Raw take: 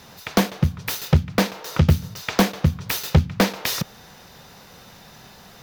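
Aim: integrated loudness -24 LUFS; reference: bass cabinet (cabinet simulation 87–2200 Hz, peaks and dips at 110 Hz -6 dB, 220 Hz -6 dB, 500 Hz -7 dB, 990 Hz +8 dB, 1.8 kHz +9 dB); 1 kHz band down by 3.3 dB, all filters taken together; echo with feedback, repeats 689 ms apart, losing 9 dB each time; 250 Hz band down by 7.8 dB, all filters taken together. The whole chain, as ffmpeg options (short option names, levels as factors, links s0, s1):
-af "highpass=f=87:w=0.5412,highpass=f=87:w=1.3066,equalizer=f=110:t=q:w=4:g=-6,equalizer=f=220:t=q:w=4:g=-6,equalizer=f=500:t=q:w=4:g=-7,equalizer=f=990:t=q:w=4:g=8,equalizer=f=1800:t=q:w=4:g=9,lowpass=f=2200:w=0.5412,lowpass=f=2200:w=1.3066,equalizer=f=250:t=o:g=-8.5,equalizer=f=1000:t=o:g=-8.5,aecho=1:1:689|1378|2067|2756:0.355|0.124|0.0435|0.0152,volume=1.5"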